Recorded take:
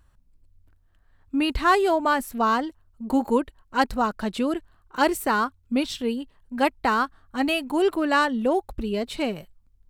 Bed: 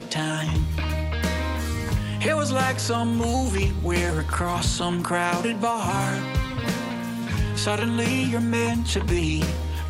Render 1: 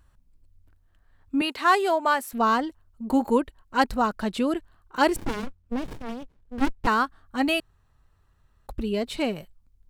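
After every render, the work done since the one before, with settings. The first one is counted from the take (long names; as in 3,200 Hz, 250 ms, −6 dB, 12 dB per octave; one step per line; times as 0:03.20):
0:01.41–0:02.33: high-pass filter 430 Hz
0:05.16–0:06.87: windowed peak hold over 65 samples
0:07.60–0:08.67: fill with room tone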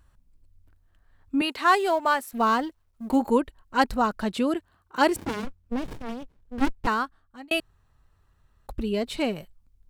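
0:01.74–0:03.16: mu-law and A-law mismatch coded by A
0:04.32–0:05.45: high-pass filter 73 Hz
0:06.71–0:07.51: fade out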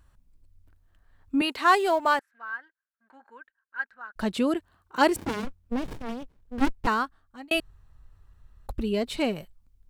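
0:02.19–0:04.16: resonant band-pass 1,600 Hz, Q 12
0:07.55–0:08.71: low-shelf EQ 91 Hz +12 dB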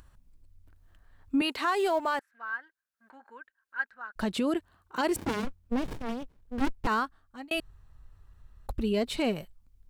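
brickwall limiter −19.5 dBFS, peak gain reduction 11 dB
upward compression, threshold −51 dBFS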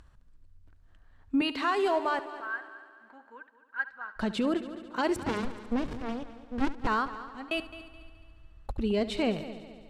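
high-frequency loss of the air 57 metres
on a send: echo machine with several playback heads 71 ms, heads first and third, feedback 57%, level −15.5 dB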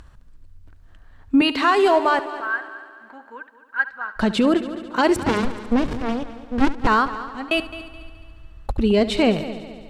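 level +10.5 dB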